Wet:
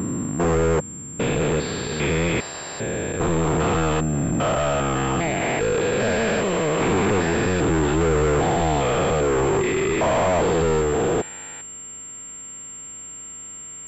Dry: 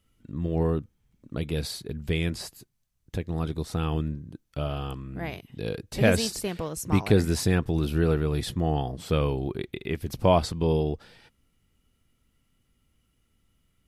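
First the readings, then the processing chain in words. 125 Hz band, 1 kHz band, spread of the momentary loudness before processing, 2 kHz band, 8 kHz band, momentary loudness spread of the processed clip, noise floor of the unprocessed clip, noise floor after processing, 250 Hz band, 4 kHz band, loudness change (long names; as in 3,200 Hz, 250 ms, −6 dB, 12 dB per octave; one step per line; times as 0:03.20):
+3.0 dB, +10.5 dB, 13 LU, +10.0 dB, +11.0 dB, 14 LU, −72 dBFS, −37 dBFS, +5.5 dB, +4.0 dB, +6.0 dB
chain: spectrum averaged block by block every 400 ms
mid-hump overdrive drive 39 dB, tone 2,000 Hz, clips at −12.5 dBFS
switching amplifier with a slow clock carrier 7,400 Hz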